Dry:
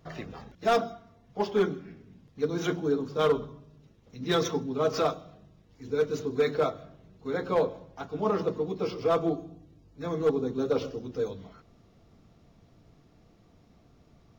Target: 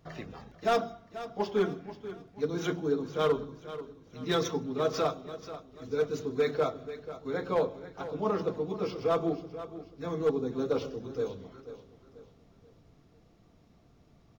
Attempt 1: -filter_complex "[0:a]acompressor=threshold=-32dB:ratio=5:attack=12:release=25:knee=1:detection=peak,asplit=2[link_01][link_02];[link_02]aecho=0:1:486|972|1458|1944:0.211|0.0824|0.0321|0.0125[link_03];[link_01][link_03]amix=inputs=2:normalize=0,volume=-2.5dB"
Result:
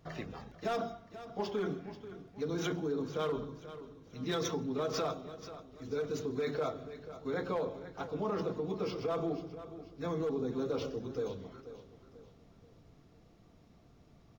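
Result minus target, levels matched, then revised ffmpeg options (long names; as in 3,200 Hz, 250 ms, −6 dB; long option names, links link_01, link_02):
downward compressor: peak gain reduction +10.5 dB
-filter_complex "[0:a]asplit=2[link_01][link_02];[link_02]aecho=0:1:486|972|1458|1944:0.211|0.0824|0.0321|0.0125[link_03];[link_01][link_03]amix=inputs=2:normalize=0,volume=-2.5dB"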